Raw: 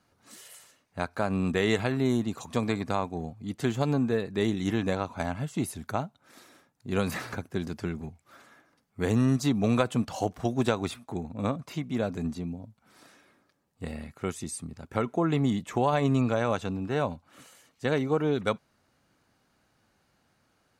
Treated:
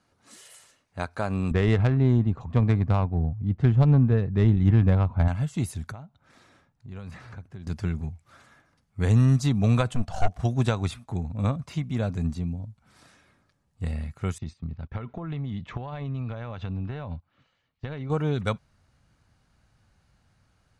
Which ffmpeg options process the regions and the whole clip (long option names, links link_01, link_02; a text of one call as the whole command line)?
ffmpeg -i in.wav -filter_complex "[0:a]asettb=1/sr,asplit=3[link_01][link_02][link_03];[link_01]atrim=end=1.514[link_04];[link_02]atrim=start=1.51:end=5.28,asetpts=PTS-STARTPTS,afade=type=in:duration=0.004:curve=qsin,afade=type=out:start_time=3.766:duration=0.004:curve=qsin,lowshelf=frequency=200:gain=9.5,adynamicsmooth=sensitivity=1:basefreq=1700[link_05];[link_03]atrim=start=5.276[link_06];[link_04][link_05]acrossfade=duration=0.004:curve1=hsin:curve2=qsin[link_07];[link_07][link_06]acrossfade=duration=0.004:curve1=qsin:curve2=hsin,asettb=1/sr,asplit=3[link_08][link_09][link_10];[link_08]atrim=end=5.924[link_11];[link_09]atrim=start=5.92:end=7.67,asetpts=PTS-STARTPTS,afade=type=in:duration=0.004:curve=qsin,afade=type=out:start_time=1.746:duration=0.004:curve=qsin,aemphasis=mode=reproduction:type=50kf,acompressor=threshold=-51dB:ratio=2:attack=3.2:release=140:knee=1:detection=peak[link_12];[link_10]atrim=start=7.666[link_13];[link_11][link_12]acrossfade=duration=0.004:curve1=hsin:curve2=qsin[link_14];[link_14][link_13]acrossfade=duration=0.004:curve1=qsin:curve2=hsin,asettb=1/sr,asplit=3[link_15][link_16][link_17];[link_15]atrim=end=9.934[link_18];[link_16]atrim=start=9.93:end=10.39,asetpts=PTS-STARTPTS,afade=type=in:duration=0.004:curve=qsin,afade=type=out:start_time=0.456:duration=0.004:curve=qsin,equalizer=frequency=690:width_type=o:width=0.35:gain=13,aeval=exprs='(tanh(11.2*val(0)+0.75)-tanh(0.75))/11.2':channel_layout=same[link_19];[link_17]atrim=start=10.386[link_20];[link_18][link_19]acrossfade=duration=0.004:curve1=hsin:curve2=qsin[link_21];[link_21][link_20]acrossfade=duration=0.004:curve1=qsin:curve2=hsin,asettb=1/sr,asplit=3[link_22][link_23][link_24];[link_22]atrim=end=14.384[link_25];[link_23]atrim=start=14.38:end=18.1,asetpts=PTS-STARTPTS,afade=type=in:duration=0.004:curve=qsin,afade=type=out:start_time=3.716:duration=0.004:curve=qsin,lowpass=frequency=4200:width=0.5412,lowpass=frequency=4200:width=1.3066,agate=range=-13dB:threshold=-50dB:ratio=16:release=100:detection=peak,acompressor=threshold=-32dB:ratio=6:attack=3.2:release=140:knee=1:detection=peak[link_26];[link_24]atrim=start=18.096[link_27];[link_25][link_26]acrossfade=duration=0.004:curve1=hsin:curve2=qsin[link_28];[link_28][link_27]acrossfade=duration=0.004:curve1=qsin:curve2=hsin,lowpass=frequency=11000:width=0.5412,lowpass=frequency=11000:width=1.3066,asubboost=boost=6:cutoff=120" out.wav